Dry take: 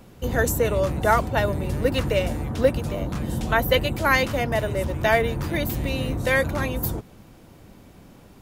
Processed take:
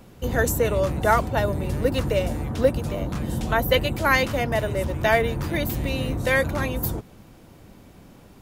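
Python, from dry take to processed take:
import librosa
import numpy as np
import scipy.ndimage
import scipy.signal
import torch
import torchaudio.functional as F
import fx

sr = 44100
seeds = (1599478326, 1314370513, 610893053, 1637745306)

y = fx.dynamic_eq(x, sr, hz=2300.0, q=0.89, threshold_db=-35.0, ratio=4.0, max_db=-4, at=(1.33, 3.71))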